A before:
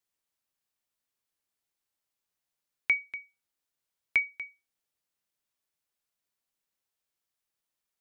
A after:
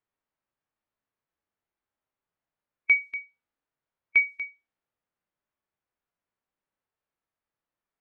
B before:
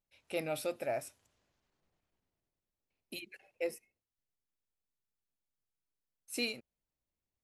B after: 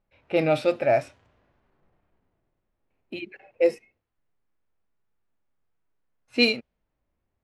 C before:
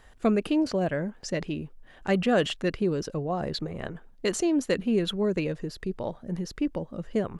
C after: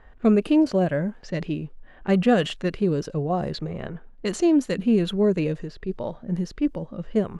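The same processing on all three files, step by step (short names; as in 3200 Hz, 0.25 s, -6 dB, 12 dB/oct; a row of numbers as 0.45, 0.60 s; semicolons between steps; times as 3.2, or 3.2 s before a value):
harmonic-percussive split harmonic +8 dB; low-pass opened by the level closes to 1700 Hz, open at -19.5 dBFS; match loudness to -24 LUFS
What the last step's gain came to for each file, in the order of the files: -0.5, +9.0, -2.0 dB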